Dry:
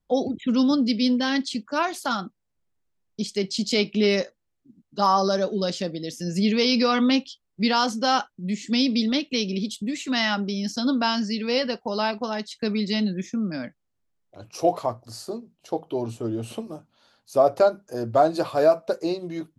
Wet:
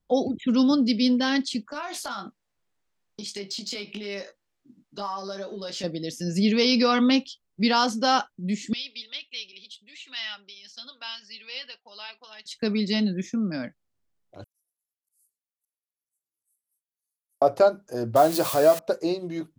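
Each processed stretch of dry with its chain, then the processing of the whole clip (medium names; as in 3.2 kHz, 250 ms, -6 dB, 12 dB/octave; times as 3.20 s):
1.72–5.84 s: compression 16:1, threshold -32 dBFS + overdrive pedal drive 10 dB, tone 6.3 kHz, clips at -19 dBFS + doubling 20 ms -6 dB
8.73–12.46 s: flange 1.9 Hz, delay 1.4 ms, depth 1.2 ms, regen -64% + band-pass filter 3.1 kHz, Q 1.8
14.44–17.42 s: inverse Chebyshev high-pass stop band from 2.7 kHz, stop band 70 dB + slow attack 722 ms
18.16–18.79 s: zero-crossing glitches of -22 dBFS + upward compressor, threshold -19 dBFS
whole clip: none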